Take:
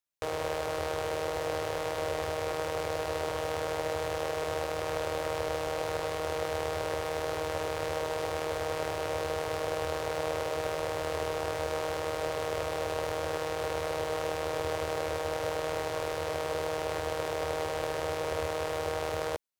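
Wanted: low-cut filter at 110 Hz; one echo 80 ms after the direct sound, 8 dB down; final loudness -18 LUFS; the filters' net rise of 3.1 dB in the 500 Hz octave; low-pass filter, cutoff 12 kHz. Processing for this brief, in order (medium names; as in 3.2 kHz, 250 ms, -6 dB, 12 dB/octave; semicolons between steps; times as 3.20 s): high-pass 110 Hz; low-pass 12 kHz; peaking EQ 500 Hz +3.5 dB; delay 80 ms -8 dB; trim +12.5 dB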